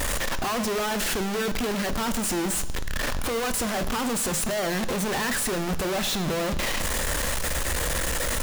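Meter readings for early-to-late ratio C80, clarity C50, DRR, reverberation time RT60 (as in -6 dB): 15.5 dB, 14.0 dB, 10.5 dB, 1.1 s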